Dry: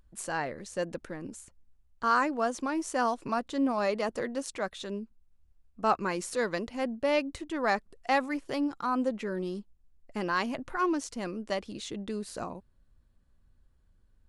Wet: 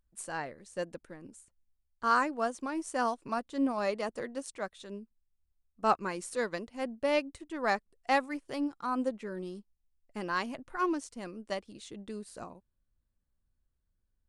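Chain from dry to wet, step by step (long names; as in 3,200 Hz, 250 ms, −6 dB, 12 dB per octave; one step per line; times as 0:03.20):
parametric band 8,800 Hz +7 dB 0.31 octaves
expander for the loud parts 1.5 to 1, over −50 dBFS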